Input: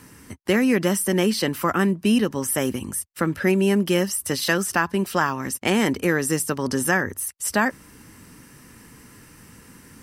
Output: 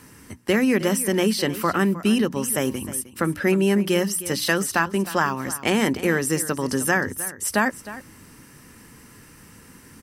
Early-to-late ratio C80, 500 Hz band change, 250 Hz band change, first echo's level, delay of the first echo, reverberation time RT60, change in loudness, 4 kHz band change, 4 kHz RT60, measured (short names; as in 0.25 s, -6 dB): none, 0.0 dB, -0.5 dB, -15.5 dB, 0.31 s, none, 0.0 dB, 0.0 dB, none